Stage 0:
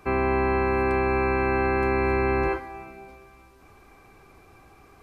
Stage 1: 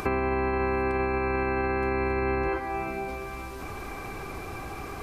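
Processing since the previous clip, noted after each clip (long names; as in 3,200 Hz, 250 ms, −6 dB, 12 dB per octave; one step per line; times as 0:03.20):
in parallel at +2.5 dB: upward compression, threshold −29 dBFS
on the sum: brickwall limiter −11.5 dBFS, peak gain reduction 6 dB
downward compressor 5 to 1, threshold −24 dBFS, peak gain reduction 7.5 dB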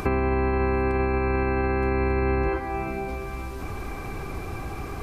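low-shelf EQ 260 Hz +8 dB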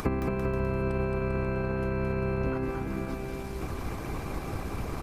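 transient designer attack 0 dB, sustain −7 dB
harmonic and percussive parts rebalanced harmonic −14 dB
bouncing-ball delay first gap 220 ms, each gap 0.8×, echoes 5
level +3 dB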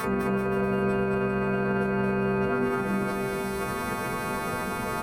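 every partial snapped to a pitch grid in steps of 2 semitones
brickwall limiter −25.5 dBFS, peak gain reduction 9.5 dB
convolution reverb RT60 0.25 s, pre-delay 3 ms, DRR 3 dB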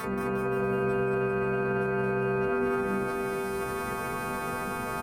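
repeating echo 176 ms, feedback 46%, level −8 dB
level −4.5 dB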